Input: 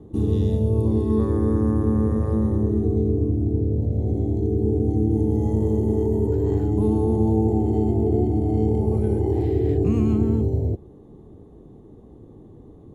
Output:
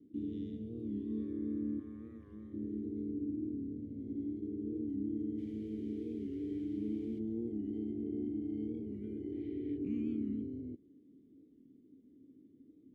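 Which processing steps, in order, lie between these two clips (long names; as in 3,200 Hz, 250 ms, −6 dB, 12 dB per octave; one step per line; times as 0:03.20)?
0:01.79–0:02.54: octave-band graphic EQ 125/250/500/1,000 Hz −5/−10/−6/+9 dB
0:05.37–0:07.18: background noise white −48 dBFS
formant filter i
wow of a warped record 45 rpm, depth 100 cents
level −5.5 dB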